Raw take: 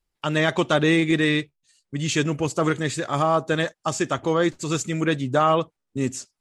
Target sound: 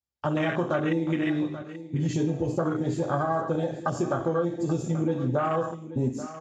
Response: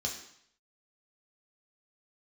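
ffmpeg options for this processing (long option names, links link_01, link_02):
-filter_complex "[0:a]bandreject=frequency=460:width=12[link_01];[1:a]atrim=start_sample=2205[link_02];[link_01][link_02]afir=irnorm=-1:irlink=0,afwtdn=0.0891,acompressor=threshold=-23dB:ratio=6,aecho=1:1:833:0.2"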